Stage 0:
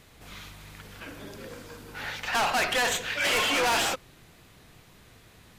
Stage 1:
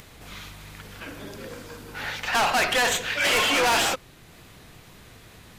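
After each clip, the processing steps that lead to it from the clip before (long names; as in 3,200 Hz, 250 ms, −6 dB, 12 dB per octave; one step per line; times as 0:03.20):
upward compression, threshold −46 dBFS
level +3.5 dB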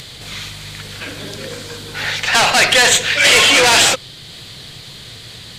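octave-band graphic EQ 125/500/2,000/4,000/8,000 Hz +10/+5/+6/+8/+10 dB
noise in a band 3,000–4,700 Hz −42 dBFS
level +3.5 dB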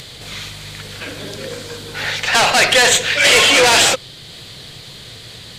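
parametric band 510 Hz +3 dB 0.99 octaves
level −1 dB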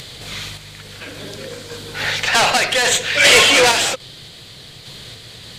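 sample-and-hold tremolo
level +1 dB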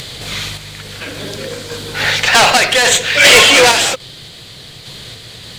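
in parallel at −0.5 dB: speech leveller 2 s
on the sum: floating-point word with a short mantissa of 4 bits
level −1 dB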